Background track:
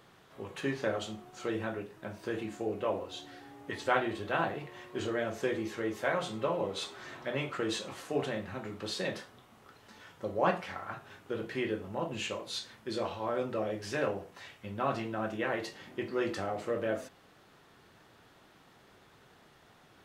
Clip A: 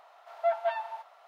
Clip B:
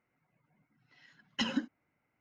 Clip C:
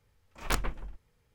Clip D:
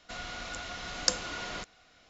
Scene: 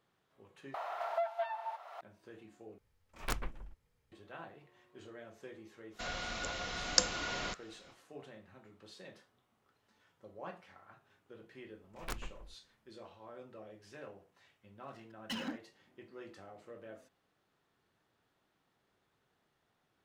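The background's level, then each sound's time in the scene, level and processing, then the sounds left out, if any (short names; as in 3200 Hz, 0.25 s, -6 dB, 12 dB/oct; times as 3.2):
background track -18 dB
0.74 replace with A -6 dB + three-band squash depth 100%
2.78 replace with C -7 dB
5.9 add D -0.5 dB, fades 0.10 s
11.58 add C -12 dB
13.91 add B -13.5 dB + sample leveller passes 3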